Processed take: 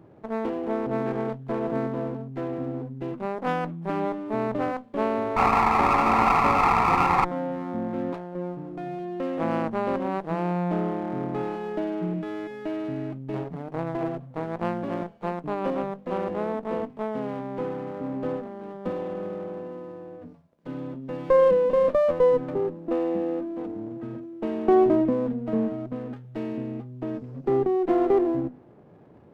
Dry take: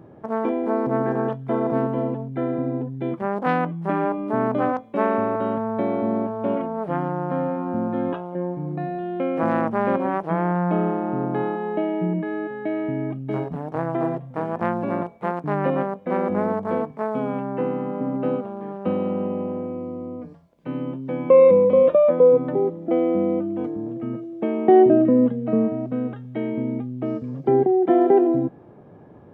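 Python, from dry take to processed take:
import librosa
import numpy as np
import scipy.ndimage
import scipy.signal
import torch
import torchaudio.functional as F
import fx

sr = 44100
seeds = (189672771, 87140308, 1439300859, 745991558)

y = fx.hum_notches(x, sr, base_hz=50, count=5)
y = fx.spec_paint(y, sr, seeds[0], shape='noise', start_s=5.36, length_s=1.89, low_hz=700.0, high_hz=1400.0, level_db=-15.0)
y = fx.running_max(y, sr, window=9)
y = F.gain(torch.from_numpy(y), -5.0).numpy()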